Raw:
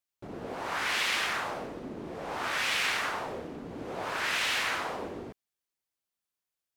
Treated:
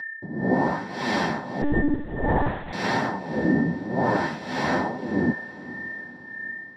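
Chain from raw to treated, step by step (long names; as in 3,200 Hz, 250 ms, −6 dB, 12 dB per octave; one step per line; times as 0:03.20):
high-pass filter 84 Hz 6 dB per octave
spectral tilt −4 dB per octave
steady tone 1,800 Hz −36 dBFS
flanger 1 Hz, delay 7.2 ms, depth 9 ms, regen +31%
amplitude tremolo 1.7 Hz, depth 82%
feedback delay with all-pass diffusion 497 ms, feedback 49%, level −16 dB
convolution reverb RT60 0.10 s, pre-delay 3 ms, DRR 10.5 dB
0:01.62–0:02.73: one-pitch LPC vocoder at 8 kHz 290 Hz
level +5 dB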